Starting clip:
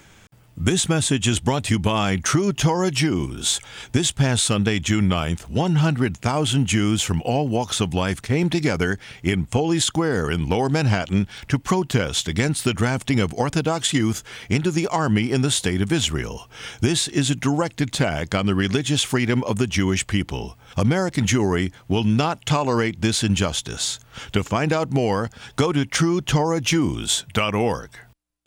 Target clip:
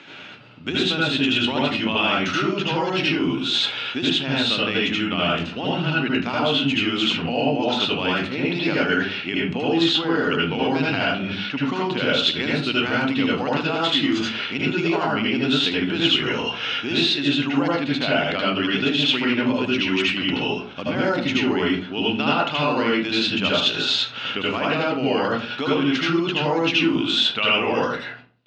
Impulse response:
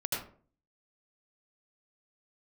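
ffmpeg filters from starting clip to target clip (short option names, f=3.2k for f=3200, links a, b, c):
-filter_complex "[0:a]areverse,acompressor=threshold=-28dB:ratio=6,areverse,highpass=260,equalizer=f=260:t=q:w=4:g=7,equalizer=f=1.4k:t=q:w=4:g=4,equalizer=f=2.7k:t=q:w=4:g=10,equalizer=f=3.9k:t=q:w=4:g=7,lowpass=f=4.5k:w=0.5412,lowpass=f=4.5k:w=1.3066[a];[1:a]atrim=start_sample=2205[b];[a][b]afir=irnorm=-1:irlink=0,volume=4.5dB"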